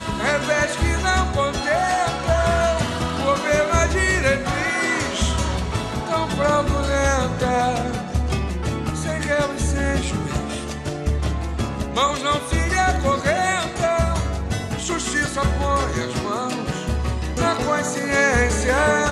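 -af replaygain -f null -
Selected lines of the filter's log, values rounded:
track_gain = +2.7 dB
track_peak = 0.367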